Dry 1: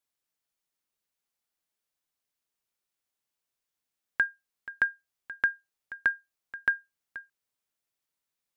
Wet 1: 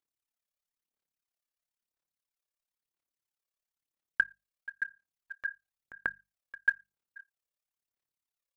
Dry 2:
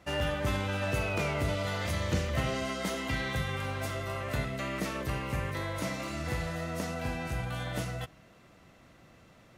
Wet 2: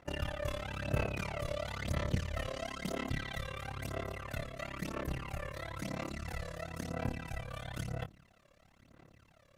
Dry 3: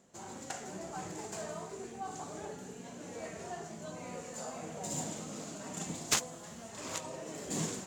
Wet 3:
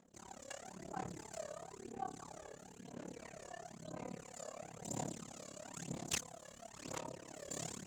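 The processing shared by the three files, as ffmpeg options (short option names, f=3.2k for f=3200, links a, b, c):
-af "tremolo=f=35:d=1,bandreject=f=50:t=h:w=6,bandreject=f=100:t=h:w=6,bandreject=f=150:t=h:w=6,bandreject=f=200:t=h:w=6,aphaser=in_gain=1:out_gain=1:delay=1.8:decay=0.6:speed=1:type=sinusoidal,volume=-5dB"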